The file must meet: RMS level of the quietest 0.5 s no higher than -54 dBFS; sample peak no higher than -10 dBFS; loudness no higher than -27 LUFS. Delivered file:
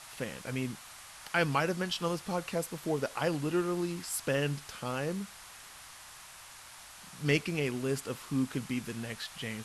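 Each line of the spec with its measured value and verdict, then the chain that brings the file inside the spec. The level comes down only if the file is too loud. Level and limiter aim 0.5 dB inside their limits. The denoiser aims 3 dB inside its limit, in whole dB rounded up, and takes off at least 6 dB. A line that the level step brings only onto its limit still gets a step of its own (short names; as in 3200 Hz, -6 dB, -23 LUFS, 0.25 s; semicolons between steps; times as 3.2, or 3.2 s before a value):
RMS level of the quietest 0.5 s -51 dBFS: fail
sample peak -15.0 dBFS: OK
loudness -33.5 LUFS: OK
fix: denoiser 6 dB, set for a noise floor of -51 dBFS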